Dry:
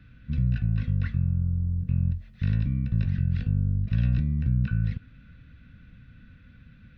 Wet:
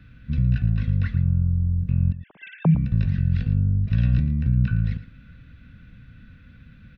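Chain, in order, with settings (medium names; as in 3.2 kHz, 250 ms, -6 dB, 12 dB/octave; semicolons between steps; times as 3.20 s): 2.12–2.75 s: formants replaced by sine waves; delay 113 ms -14.5 dB; trim +3.5 dB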